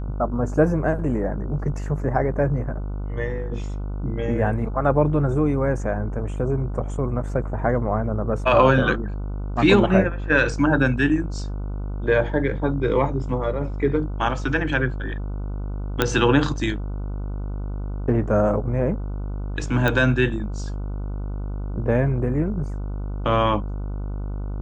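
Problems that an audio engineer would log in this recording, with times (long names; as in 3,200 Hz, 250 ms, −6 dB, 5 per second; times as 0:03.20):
mains buzz 50 Hz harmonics 30 −28 dBFS
0:16.02: click −4 dBFS
0:19.88: click −9 dBFS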